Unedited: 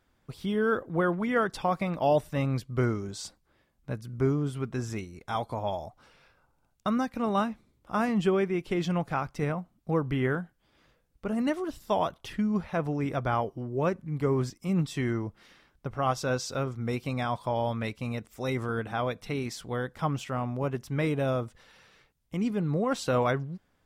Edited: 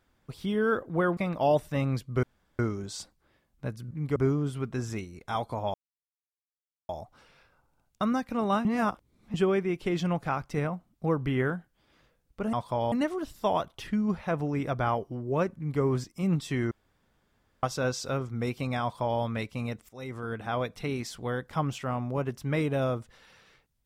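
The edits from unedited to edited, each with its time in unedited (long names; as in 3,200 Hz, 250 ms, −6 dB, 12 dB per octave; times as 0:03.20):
0:01.17–0:01.78: remove
0:02.84: splice in room tone 0.36 s
0:05.74: splice in silence 1.15 s
0:07.50–0:08.19: reverse
0:14.02–0:14.27: duplicate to 0:04.16
0:15.17–0:16.09: fill with room tone
0:17.28–0:17.67: duplicate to 0:11.38
0:18.35–0:19.05: fade in, from −15.5 dB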